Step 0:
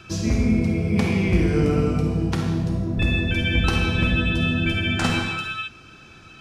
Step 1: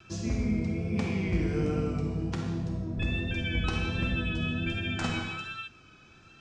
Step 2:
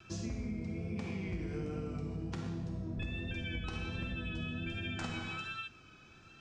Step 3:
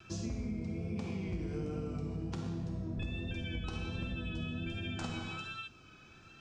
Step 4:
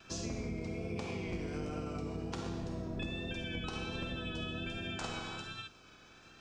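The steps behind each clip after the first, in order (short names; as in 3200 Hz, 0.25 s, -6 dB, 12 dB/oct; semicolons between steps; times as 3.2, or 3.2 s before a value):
Chebyshev low-pass 7600 Hz, order 3; vibrato 1.3 Hz 39 cents; gain -9 dB
compressor, threshold -33 dBFS, peak gain reduction 10 dB; gain -2.5 dB
dynamic EQ 1900 Hz, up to -7 dB, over -60 dBFS, Q 1.8; gain +1 dB
spectral limiter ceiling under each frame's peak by 13 dB; gain -1 dB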